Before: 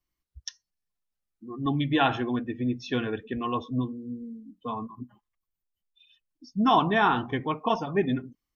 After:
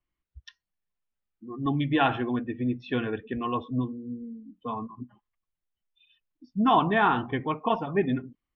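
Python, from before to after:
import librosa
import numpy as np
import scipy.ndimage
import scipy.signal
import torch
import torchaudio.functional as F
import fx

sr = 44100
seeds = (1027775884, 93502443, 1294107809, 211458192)

y = scipy.signal.sosfilt(scipy.signal.butter(4, 3300.0, 'lowpass', fs=sr, output='sos'), x)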